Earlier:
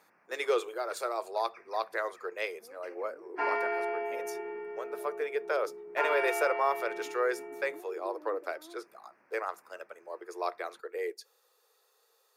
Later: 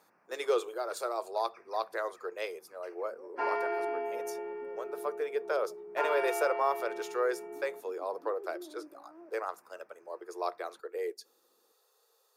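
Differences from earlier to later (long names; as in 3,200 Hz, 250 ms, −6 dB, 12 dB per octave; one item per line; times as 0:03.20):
second sound: entry +0.50 s
master: add parametric band 2,100 Hz −6.5 dB 0.89 octaves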